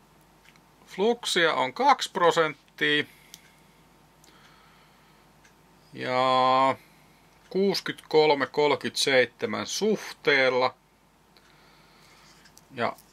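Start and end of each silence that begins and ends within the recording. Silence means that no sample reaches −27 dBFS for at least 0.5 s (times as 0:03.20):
0:03.34–0:06.00
0:06.72–0:07.55
0:10.68–0:12.78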